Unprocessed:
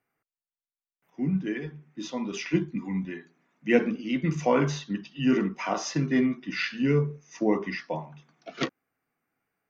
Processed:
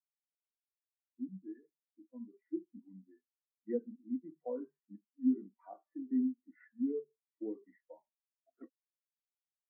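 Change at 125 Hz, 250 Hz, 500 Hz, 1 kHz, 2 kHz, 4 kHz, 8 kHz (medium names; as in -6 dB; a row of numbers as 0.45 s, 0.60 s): under -30 dB, -11.0 dB, -15.0 dB, -24.5 dB, under -35 dB, under -40 dB, no reading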